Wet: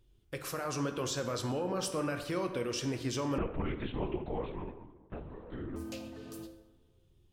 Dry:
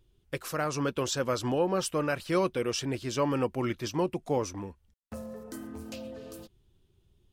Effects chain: peak limiter -25 dBFS, peak gain reduction 8.5 dB; plate-style reverb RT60 1.2 s, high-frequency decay 0.55×, DRR 6 dB; 3.38–5.76 s: LPC vocoder at 8 kHz whisper; trim -2 dB

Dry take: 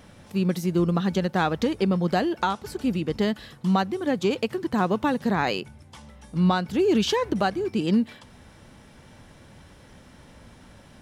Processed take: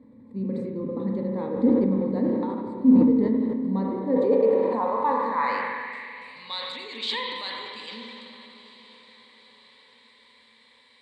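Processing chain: rippled EQ curve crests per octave 0.98, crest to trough 16 dB; echo that smears into a reverb 936 ms, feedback 53%, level -15.5 dB; spring tank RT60 3 s, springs 31/42 ms, chirp 50 ms, DRR -0.5 dB; band-pass sweep 270 Hz -> 3.2 kHz, 3.68–6.55 s; decay stretcher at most 26 dB/s

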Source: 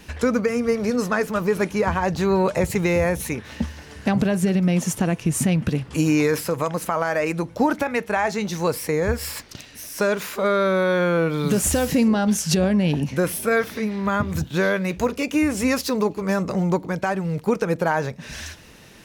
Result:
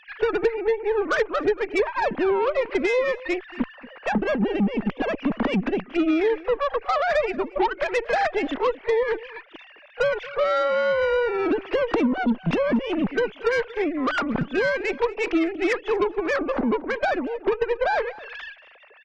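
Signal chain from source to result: formants replaced by sine waves; on a send: reverse echo 30 ms -23.5 dB; on the sum: compression 6:1, threshold -24 dBFS, peak gain reduction 15.5 dB; Chebyshev shaper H 8 -21 dB, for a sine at -14.5 dBFS; echo from a far wall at 40 m, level -19 dB; trim +4.5 dB

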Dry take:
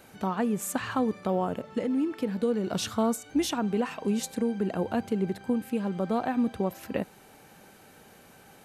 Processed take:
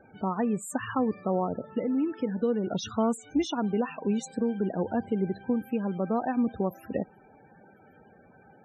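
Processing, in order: loudest bins only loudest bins 32

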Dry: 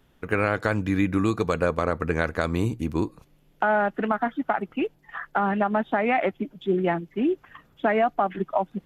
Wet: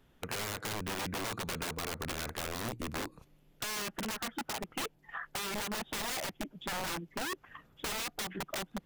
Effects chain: integer overflow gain 22 dB; compression 2.5:1, threshold -33 dBFS, peak gain reduction 6 dB; trim -4 dB

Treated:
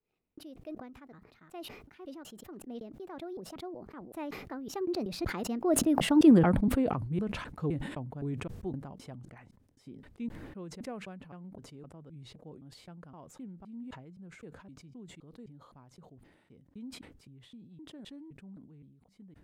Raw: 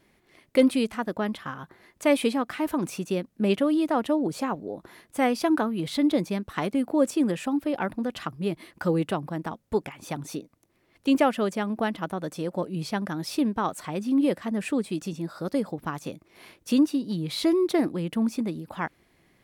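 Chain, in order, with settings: slices played last to first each 223 ms, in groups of 2; Doppler pass-by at 6.31 s, 55 m/s, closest 16 m; tilt EQ -2.5 dB/octave; decay stretcher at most 55 dB/s

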